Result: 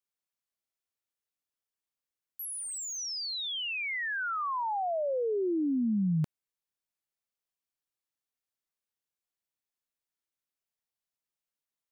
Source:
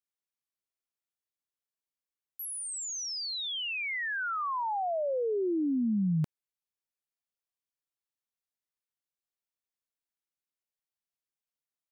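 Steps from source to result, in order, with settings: 2.42–2.98 s: hard clipper -35.5 dBFS, distortion -36 dB

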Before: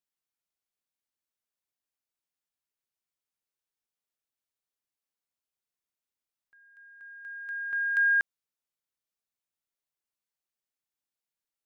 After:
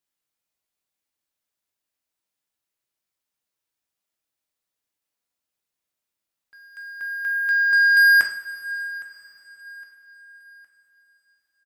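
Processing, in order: waveshaping leveller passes 2; in parallel at -11.5 dB: saturation -32 dBFS, distortion -8 dB; on the sum: feedback delay 812 ms, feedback 42%, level -23 dB; two-slope reverb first 0.47 s, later 4.9 s, from -18 dB, DRR 2.5 dB; trim +6.5 dB

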